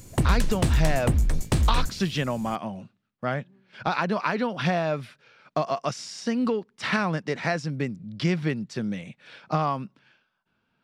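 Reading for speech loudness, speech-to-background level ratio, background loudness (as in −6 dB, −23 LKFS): −28.5 LKFS, −3.0 dB, −25.5 LKFS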